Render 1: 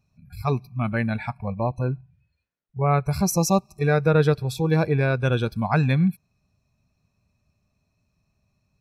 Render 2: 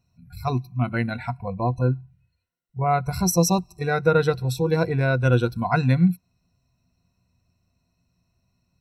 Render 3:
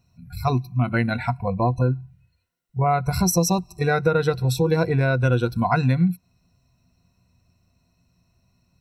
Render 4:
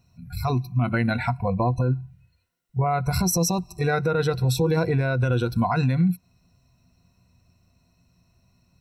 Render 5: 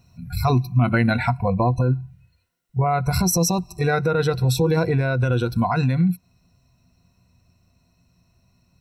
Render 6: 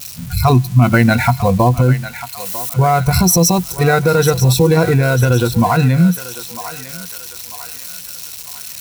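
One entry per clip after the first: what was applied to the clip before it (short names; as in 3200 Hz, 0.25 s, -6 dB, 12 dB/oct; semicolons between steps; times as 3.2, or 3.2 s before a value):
ripple EQ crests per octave 2, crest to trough 12 dB; gain -1 dB
compressor 4:1, threshold -22 dBFS, peak gain reduction 8.5 dB; gain +5.5 dB
limiter -16 dBFS, peak gain reduction 8.5 dB; gain +2 dB
vocal rider within 4 dB 2 s; gain +3 dB
switching spikes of -26 dBFS; thinning echo 0.947 s, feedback 54%, high-pass 820 Hz, level -10.5 dB; gain +7.5 dB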